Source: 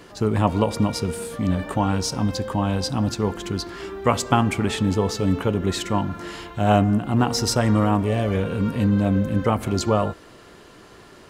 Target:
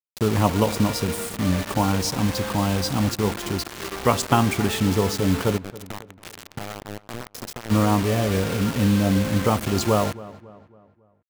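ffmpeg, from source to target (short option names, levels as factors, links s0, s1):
-filter_complex "[0:a]asplit=3[s0][s1][s2];[s0]afade=t=out:st=5.56:d=0.02[s3];[s1]acompressor=threshold=0.0251:ratio=10,afade=t=in:st=5.56:d=0.02,afade=t=out:st=7.7:d=0.02[s4];[s2]afade=t=in:st=7.7:d=0.02[s5];[s3][s4][s5]amix=inputs=3:normalize=0,acrusher=bits=4:mix=0:aa=0.000001,asplit=2[s6][s7];[s7]adelay=275,lowpass=f=2300:p=1,volume=0.126,asplit=2[s8][s9];[s9]adelay=275,lowpass=f=2300:p=1,volume=0.45,asplit=2[s10][s11];[s11]adelay=275,lowpass=f=2300:p=1,volume=0.45,asplit=2[s12][s13];[s13]adelay=275,lowpass=f=2300:p=1,volume=0.45[s14];[s6][s8][s10][s12][s14]amix=inputs=5:normalize=0"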